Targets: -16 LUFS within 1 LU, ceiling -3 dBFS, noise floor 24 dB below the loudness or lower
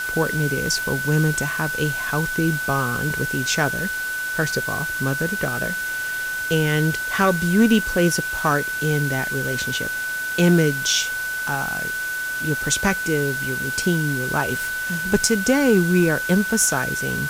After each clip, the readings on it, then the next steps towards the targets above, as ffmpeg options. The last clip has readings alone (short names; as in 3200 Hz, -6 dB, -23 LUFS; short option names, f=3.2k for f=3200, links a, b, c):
steady tone 1500 Hz; tone level -24 dBFS; noise floor -27 dBFS; noise floor target -45 dBFS; loudness -21.0 LUFS; peak -5.0 dBFS; loudness target -16.0 LUFS
-> -af "bandreject=f=1.5k:w=30"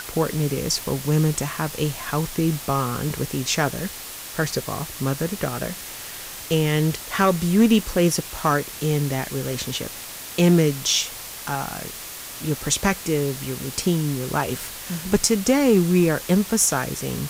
steady tone none; noise floor -36 dBFS; noise floor target -47 dBFS
-> -af "afftdn=nr=11:nf=-36"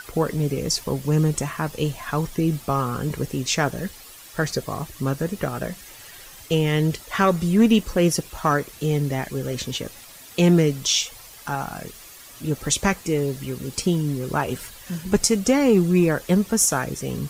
noise floor -44 dBFS; noise floor target -47 dBFS
-> -af "afftdn=nr=6:nf=-44"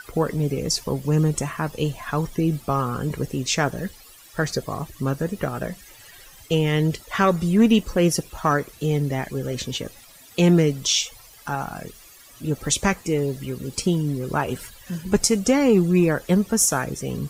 noise floor -48 dBFS; loudness -22.5 LUFS; peak -5.0 dBFS; loudness target -16.0 LUFS
-> -af "volume=6.5dB,alimiter=limit=-3dB:level=0:latency=1"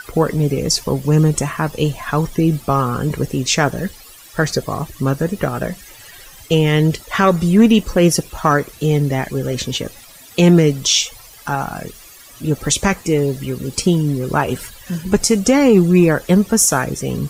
loudness -16.5 LUFS; peak -3.0 dBFS; noise floor -41 dBFS